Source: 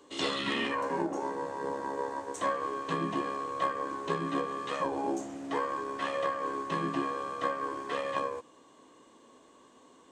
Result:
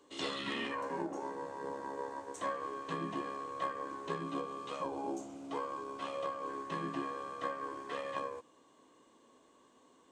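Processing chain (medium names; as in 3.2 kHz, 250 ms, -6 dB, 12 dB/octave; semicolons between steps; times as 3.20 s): 4.23–6.49 s: peaking EQ 1.8 kHz -14.5 dB 0.22 oct; trim -6.5 dB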